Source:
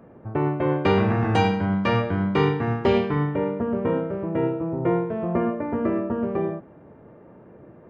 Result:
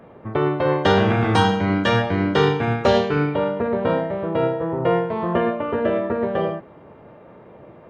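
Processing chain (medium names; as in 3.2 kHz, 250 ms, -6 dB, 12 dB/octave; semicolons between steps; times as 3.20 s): formant shift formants +5 st; trim +3 dB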